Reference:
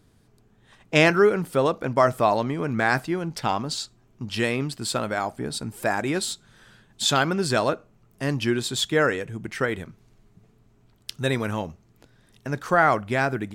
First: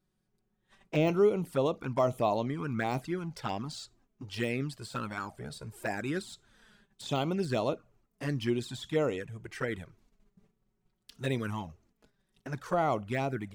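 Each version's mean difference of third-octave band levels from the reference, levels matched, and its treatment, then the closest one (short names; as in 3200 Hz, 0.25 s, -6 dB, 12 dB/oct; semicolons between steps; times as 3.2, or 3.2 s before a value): 2.5 dB: gate -55 dBFS, range -10 dB; envelope flanger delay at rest 5.5 ms, full sweep at -18.5 dBFS; de-esser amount 80%; gain -5.5 dB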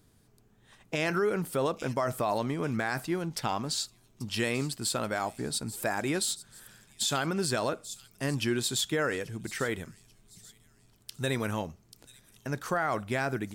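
4.5 dB: high shelf 6700 Hz +9.5 dB; thin delay 0.837 s, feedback 36%, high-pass 5500 Hz, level -13 dB; limiter -14.5 dBFS, peak gain reduction 11 dB; gain -4.5 dB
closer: first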